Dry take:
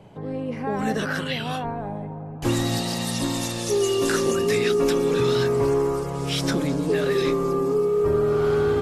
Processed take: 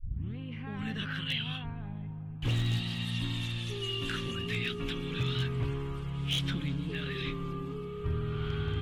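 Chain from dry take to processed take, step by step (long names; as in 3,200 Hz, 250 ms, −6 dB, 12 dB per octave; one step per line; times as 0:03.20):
turntable start at the beginning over 0.38 s
drawn EQ curve 110 Hz 0 dB, 580 Hz −26 dB, 1,300 Hz −12 dB, 2,000 Hz −8 dB, 3,200 Hz +1 dB, 5,200 Hz −22 dB
wave folding −23 dBFS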